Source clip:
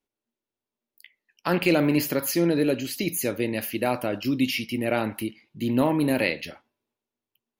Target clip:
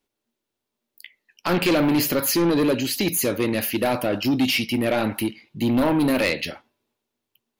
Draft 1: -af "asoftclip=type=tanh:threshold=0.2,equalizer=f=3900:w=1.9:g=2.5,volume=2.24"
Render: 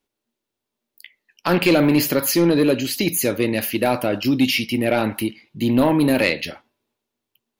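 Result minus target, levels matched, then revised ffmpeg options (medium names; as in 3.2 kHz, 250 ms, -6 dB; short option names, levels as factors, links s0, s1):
saturation: distortion -8 dB
-af "asoftclip=type=tanh:threshold=0.0794,equalizer=f=3900:w=1.9:g=2.5,volume=2.24"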